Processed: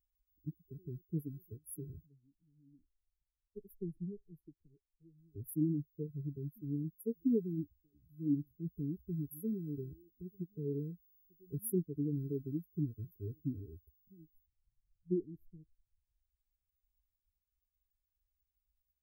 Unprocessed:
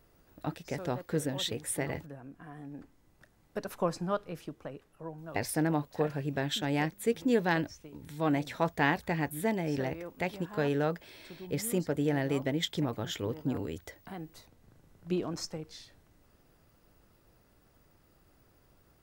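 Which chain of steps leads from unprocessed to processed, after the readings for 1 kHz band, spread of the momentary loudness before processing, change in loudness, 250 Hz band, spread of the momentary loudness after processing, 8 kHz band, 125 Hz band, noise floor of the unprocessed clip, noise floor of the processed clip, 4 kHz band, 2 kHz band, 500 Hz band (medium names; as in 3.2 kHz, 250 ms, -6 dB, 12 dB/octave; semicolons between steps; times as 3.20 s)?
under -40 dB, 17 LU, -7.0 dB, -5.0 dB, 17 LU, -12.0 dB, -4.5 dB, -66 dBFS, under -85 dBFS, under -40 dB, under -40 dB, -11.0 dB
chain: expander on every frequency bin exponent 2; brick-wall FIR band-stop 450–10000 Hz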